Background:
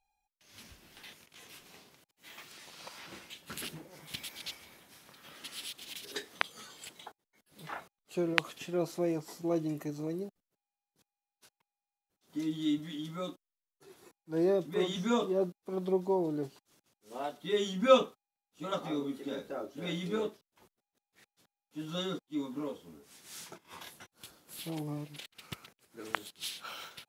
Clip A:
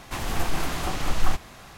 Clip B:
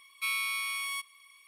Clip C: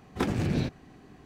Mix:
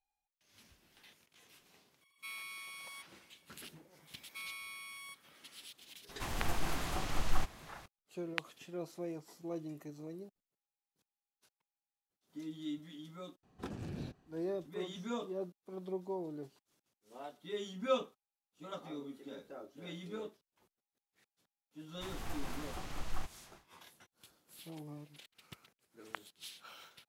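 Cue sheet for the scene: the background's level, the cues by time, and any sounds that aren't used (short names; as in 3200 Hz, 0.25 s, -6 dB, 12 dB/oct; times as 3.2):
background -10 dB
2.01 add B -14.5 dB
4.13 add B -14.5 dB
6.09 add A -9 dB
13.43 add C -15.5 dB + bell 2100 Hz -8.5 dB 0.23 oct
21.9 add A -16 dB, fades 0.10 s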